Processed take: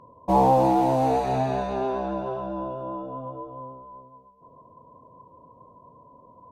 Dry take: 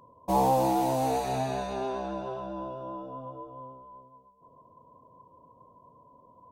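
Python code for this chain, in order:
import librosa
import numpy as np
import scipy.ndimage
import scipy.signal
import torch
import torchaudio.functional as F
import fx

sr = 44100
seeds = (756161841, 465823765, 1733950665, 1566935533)

y = fx.lowpass(x, sr, hz=1800.0, slope=6)
y = y * 10.0 ** (6.0 / 20.0)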